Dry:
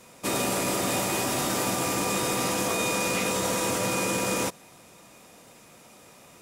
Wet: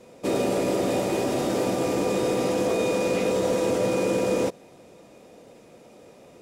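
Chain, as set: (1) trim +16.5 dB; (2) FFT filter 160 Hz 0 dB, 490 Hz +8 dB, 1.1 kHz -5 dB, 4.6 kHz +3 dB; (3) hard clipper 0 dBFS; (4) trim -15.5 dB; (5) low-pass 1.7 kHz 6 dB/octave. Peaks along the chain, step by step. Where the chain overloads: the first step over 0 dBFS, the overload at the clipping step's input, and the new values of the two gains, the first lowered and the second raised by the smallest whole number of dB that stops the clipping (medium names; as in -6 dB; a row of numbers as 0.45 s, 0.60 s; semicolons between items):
+2.5 dBFS, +6.0 dBFS, 0.0 dBFS, -15.5 dBFS, -15.5 dBFS; step 1, 6.0 dB; step 1 +10.5 dB, step 4 -9.5 dB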